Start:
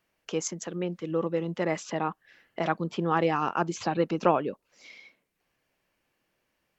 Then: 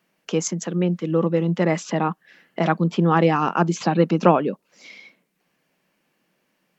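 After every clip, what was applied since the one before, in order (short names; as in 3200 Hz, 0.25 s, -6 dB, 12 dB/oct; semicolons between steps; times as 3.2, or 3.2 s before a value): resonant low shelf 120 Hz -12.5 dB, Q 3; gain +6 dB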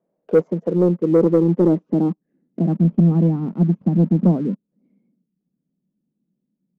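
low-pass sweep 580 Hz -> 220 Hz, 0.1–3.01; dynamic EQ 740 Hz, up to +5 dB, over -30 dBFS, Q 0.71; sample leveller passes 1; gain -3 dB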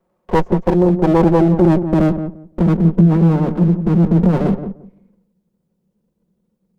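minimum comb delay 5.5 ms; in parallel at 0 dB: negative-ratio compressor -20 dBFS, ratio -1; on the sum: darkening echo 0.173 s, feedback 19%, low-pass 870 Hz, level -8.5 dB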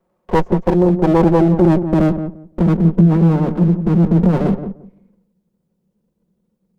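nothing audible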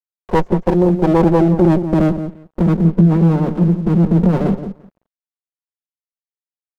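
crossover distortion -45.5 dBFS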